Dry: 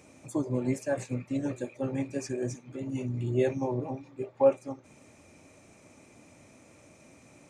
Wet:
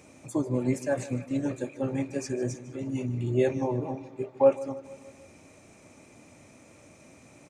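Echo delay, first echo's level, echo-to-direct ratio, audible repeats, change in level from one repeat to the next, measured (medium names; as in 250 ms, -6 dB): 153 ms, -17.5 dB, -16.0 dB, 4, -4.5 dB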